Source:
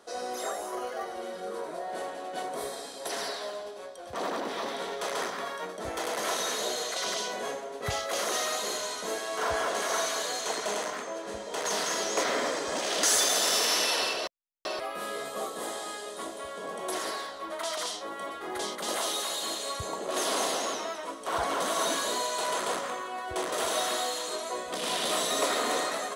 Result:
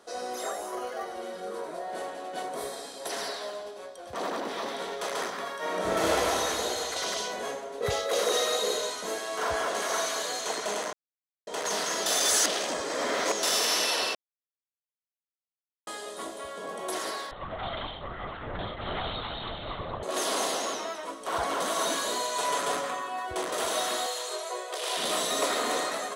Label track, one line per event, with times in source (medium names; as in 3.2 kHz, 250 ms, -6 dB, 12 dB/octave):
5.580000	6.110000	reverb throw, RT60 2.9 s, DRR -8.5 dB
7.780000	8.900000	small resonant body resonances 470/3800 Hz, height 14 dB
10.930000	11.470000	mute
12.060000	13.430000	reverse
14.150000	15.870000	mute
17.310000	20.030000	LPC vocoder at 8 kHz whisper
22.350000	23.270000	comb 7 ms
24.060000	24.970000	Chebyshev high-pass 370 Hz, order 5